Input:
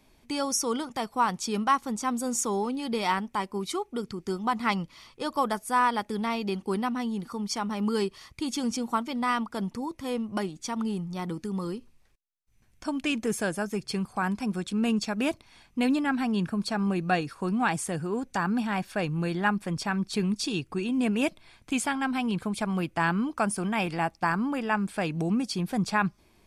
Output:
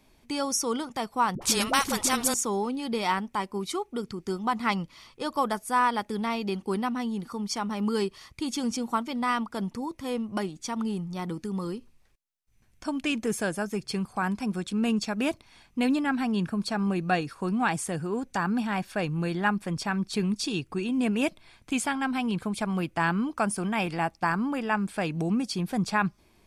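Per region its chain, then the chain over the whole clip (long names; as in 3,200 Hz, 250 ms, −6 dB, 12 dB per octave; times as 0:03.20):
0:01.35–0:02.34: de-essing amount 30% + all-pass dispersion highs, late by 66 ms, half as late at 410 Hz + every bin compressed towards the loudest bin 2 to 1
whole clip: no processing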